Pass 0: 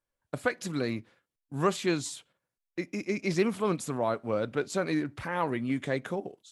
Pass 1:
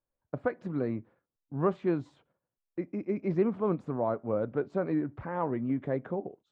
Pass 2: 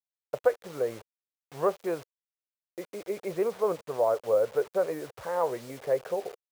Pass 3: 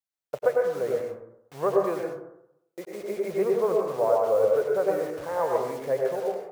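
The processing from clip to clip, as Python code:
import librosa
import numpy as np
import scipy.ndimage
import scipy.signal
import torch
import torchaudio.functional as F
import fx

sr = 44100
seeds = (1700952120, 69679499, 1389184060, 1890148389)

y1 = scipy.signal.sosfilt(scipy.signal.butter(2, 1000.0, 'lowpass', fs=sr, output='sos'), x)
y2 = fx.env_lowpass(y1, sr, base_hz=2800.0, full_db=-23.5)
y2 = fx.quant_dither(y2, sr, seeds[0], bits=8, dither='none')
y2 = fx.low_shelf_res(y2, sr, hz=360.0, db=-10.0, q=3.0)
y2 = y2 * 10.0 ** (1.0 / 20.0)
y3 = fx.rev_plate(y2, sr, seeds[1], rt60_s=0.79, hf_ratio=0.3, predelay_ms=85, drr_db=0.0)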